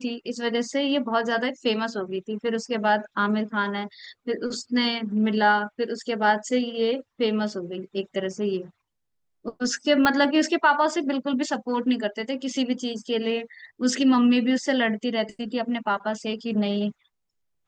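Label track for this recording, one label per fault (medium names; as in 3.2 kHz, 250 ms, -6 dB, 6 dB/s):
10.050000	10.050000	pop -7 dBFS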